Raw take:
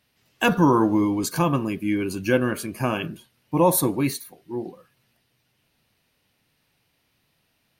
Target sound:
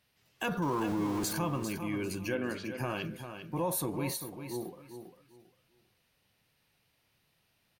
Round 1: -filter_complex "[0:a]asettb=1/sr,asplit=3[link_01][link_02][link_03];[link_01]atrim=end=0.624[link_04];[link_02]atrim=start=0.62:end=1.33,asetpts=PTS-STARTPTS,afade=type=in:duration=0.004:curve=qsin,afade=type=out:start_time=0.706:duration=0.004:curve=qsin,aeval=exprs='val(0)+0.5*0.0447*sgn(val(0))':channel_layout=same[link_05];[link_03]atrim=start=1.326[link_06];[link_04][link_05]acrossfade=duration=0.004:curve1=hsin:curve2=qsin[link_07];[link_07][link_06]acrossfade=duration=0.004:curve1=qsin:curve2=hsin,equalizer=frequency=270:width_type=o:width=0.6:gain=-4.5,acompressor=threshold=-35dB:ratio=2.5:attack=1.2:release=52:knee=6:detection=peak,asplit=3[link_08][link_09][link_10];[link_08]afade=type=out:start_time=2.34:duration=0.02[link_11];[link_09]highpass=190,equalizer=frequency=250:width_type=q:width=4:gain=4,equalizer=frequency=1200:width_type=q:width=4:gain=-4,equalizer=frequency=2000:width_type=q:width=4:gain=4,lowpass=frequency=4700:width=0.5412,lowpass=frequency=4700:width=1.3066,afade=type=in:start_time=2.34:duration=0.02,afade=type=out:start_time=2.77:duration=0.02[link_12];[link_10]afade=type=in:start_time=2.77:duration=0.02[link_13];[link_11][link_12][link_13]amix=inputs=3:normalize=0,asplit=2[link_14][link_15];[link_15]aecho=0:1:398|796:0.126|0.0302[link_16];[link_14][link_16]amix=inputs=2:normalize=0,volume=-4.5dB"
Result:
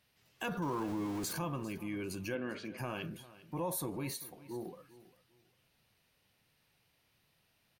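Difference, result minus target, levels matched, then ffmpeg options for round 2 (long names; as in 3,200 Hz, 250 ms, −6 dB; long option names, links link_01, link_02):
echo-to-direct −9 dB; downward compressor: peak gain reduction +4.5 dB
-filter_complex "[0:a]asettb=1/sr,asplit=3[link_01][link_02][link_03];[link_01]atrim=end=0.624[link_04];[link_02]atrim=start=0.62:end=1.33,asetpts=PTS-STARTPTS,afade=type=in:duration=0.004:curve=qsin,afade=type=out:start_time=0.706:duration=0.004:curve=qsin,aeval=exprs='val(0)+0.5*0.0447*sgn(val(0))':channel_layout=same[link_05];[link_03]atrim=start=1.326[link_06];[link_04][link_05]acrossfade=duration=0.004:curve1=hsin:curve2=qsin[link_07];[link_07][link_06]acrossfade=duration=0.004:curve1=qsin:curve2=hsin,equalizer=frequency=270:width_type=o:width=0.6:gain=-4.5,acompressor=threshold=-27.5dB:ratio=2.5:attack=1.2:release=52:knee=6:detection=peak,asplit=3[link_08][link_09][link_10];[link_08]afade=type=out:start_time=2.34:duration=0.02[link_11];[link_09]highpass=190,equalizer=frequency=250:width_type=q:width=4:gain=4,equalizer=frequency=1200:width_type=q:width=4:gain=-4,equalizer=frequency=2000:width_type=q:width=4:gain=4,lowpass=frequency=4700:width=0.5412,lowpass=frequency=4700:width=1.3066,afade=type=in:start_time=2.34:duration=0.02,afade=type=out:start_time=2.77:duration=0.02[link_12];[link_10]afade=type=in:start_time=2.77:duration=0.02[link_13];[link_11][link_12][link_13]amix=inputs=3:normalize=0,asplit=2[link_14][link_15];[link_15]aecho=0:1:398|796|1194:0.355|0.0852|0.0204[link_16];[link_14][link_16]amix=inputs=2:normalize=0,volume=-4.5dB"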